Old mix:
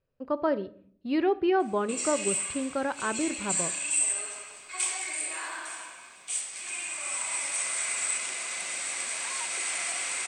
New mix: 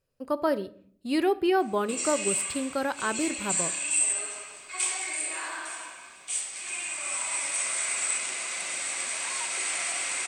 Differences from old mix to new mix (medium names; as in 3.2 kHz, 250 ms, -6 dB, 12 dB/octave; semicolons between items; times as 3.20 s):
speech: remove distance through air 260 m; background: send +7.5 dB